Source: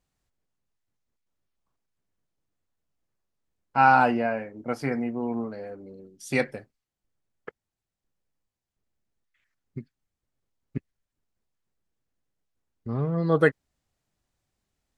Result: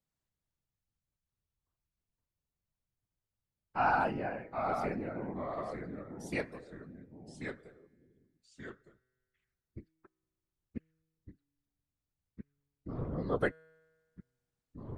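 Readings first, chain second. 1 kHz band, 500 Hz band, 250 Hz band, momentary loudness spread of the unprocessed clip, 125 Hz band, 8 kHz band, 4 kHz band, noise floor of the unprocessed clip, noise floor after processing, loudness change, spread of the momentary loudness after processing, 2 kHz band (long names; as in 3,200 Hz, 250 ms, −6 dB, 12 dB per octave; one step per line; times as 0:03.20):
−10.5 dB, −9.0 dB, −10.5 dB, 24 LU, −10.5 dB, −10.0 dB, −10.0 dB, below −85 dBFS, below −85 dBFS, −11.5 dB, 23 LU, −10.5 dB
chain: random phases in short frames
tuned comb filter 160 Hz, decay 1.5 s, mix 30%
delay with pitch and tempo change per echo 312 ms, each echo −2 semitones, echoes 2, each echo −6 dB
level −8 dB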